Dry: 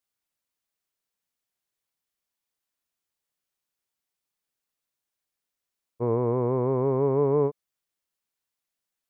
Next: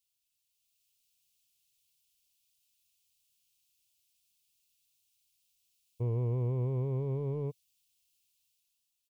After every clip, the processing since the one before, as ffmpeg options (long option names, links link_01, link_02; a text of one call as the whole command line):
ffmpeg -i in.wav -af "alimiter=limit=-22.5dB:level=0:latency=1:release=17,firequalizer=gain_entry='entry(120,0);entry(200,-13);entry(1600,-24);entry(2600,4)':delay=0.05:min_phase=1,dynaudnorm=framelen=100:gausssize=13:maxgain=7dB" out.wav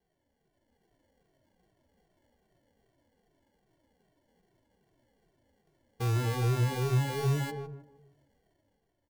ffmpeg -i in.wav -filter_complex "[0:a]acrusher=samples=35:mix=1:aa=0.000001,asplit=2[link_01][link_02];[link_02]adelay=156,lowpass=frequency=1000:poles=1,volume=-5dB,asplit=2[link_03][link_04];[link_04]adelay=156,lowpass=frequency=1000:poles=1,volume=0.4,asplit=2[link_05][link_06];[link_06]adelay=156,lowpass=frequency=1000:poles=1,volume=0.4,asplit=2[link_07][link_08];[link_08]adelay=156,lowpass=frequency=1000:poles=1,volume=0.4,asplit=2[link_09][link_10];[link_10]adelay=156,lowpass=frequency=1000:poles=1,volume=0.4[link_11];[link_03][link_05][link_07][link_09][link_11]amix=inputs=5:normalize=0[link_12];[link_01][link_12]amix=inputs=2:normalize=0,asplit=2[link_13][link_14];[link_14]adelay=2.1,afreqshift=-2.5[link_15];[link_13][link_15]amix=inputs=2:normalize=1,volume=5.5dB" out.wav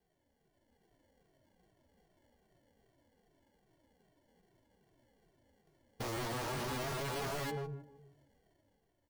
ffmpeg -i in.wav -af "aeval=exprs='0.0211*(abs(mod(val(0)/0.0211+3,4)-2)-1)':channel_layout=same" out.wav